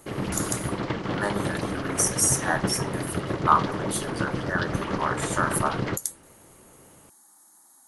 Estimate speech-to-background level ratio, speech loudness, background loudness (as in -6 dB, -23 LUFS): 2.5 dB, -27.5 LUFS, -30.0 LUFS